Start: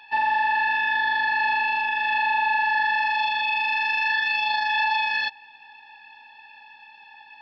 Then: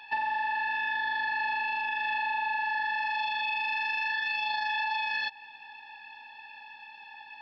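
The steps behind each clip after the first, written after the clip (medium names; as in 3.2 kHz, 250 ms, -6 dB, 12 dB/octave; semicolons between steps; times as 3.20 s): compression, threshold -28 dBFS, peak gain reduction 8.5 dB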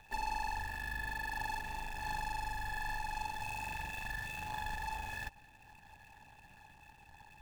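median filter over 41 samples; trim +1 dB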